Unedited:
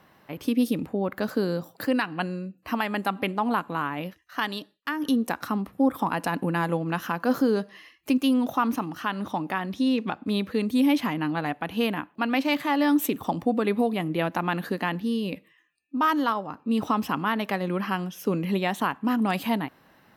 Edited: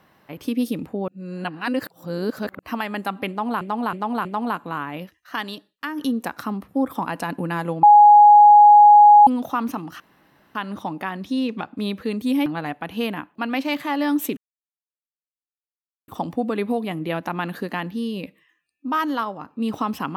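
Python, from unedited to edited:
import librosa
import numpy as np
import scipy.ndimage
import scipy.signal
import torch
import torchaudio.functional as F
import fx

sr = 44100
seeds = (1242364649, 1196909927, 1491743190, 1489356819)

y = fx.edit(x, sr, fx.reverse_span(start_s=1.08, length_s=1.51),
    fx.repeat(start_s=3.29, length_s=0.32, count=4),
    fx.bleep(start_s=6.87, length_s=1.44, hz=831.0, db=-6.0),
    fx.insert_room_tone(at_s=9.04, length_s=0.55),
    fx.cut(start_s=10.95, length_s=0.31),
    fx.insert_silence(at_s=13.17, length_s=1.71), tone=tone)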